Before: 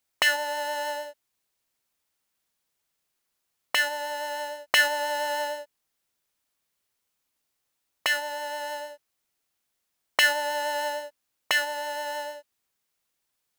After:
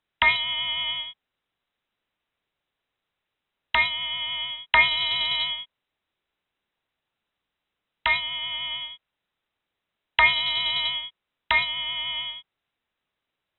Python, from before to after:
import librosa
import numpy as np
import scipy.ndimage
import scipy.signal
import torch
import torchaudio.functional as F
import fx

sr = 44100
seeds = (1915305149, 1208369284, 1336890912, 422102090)

p1 = fx.schmitt(x, sr, flips_db=-21.0)
p2 = x + (p1 * 10.0 ** (-5.0 / 20.0))
p3 = fx.freq_invert(p2, sr, carrier_hz=3900)
y = p3 * 10.0 ** (2.5 / 20.0)